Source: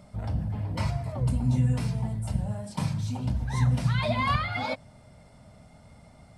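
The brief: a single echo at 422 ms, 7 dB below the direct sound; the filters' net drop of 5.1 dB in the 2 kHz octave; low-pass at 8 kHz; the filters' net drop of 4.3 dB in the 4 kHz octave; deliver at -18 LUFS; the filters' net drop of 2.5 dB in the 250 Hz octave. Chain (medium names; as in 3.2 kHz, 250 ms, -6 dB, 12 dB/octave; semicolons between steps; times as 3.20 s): low-pass 8 kHz; peaking EQ 250 Hz -3.5 dB; peaking EQ 2 kHz -5 dB; peaking EQ 4 kHz -3.5 dB; delay 422 ms -7 dB; trim +10.5 dB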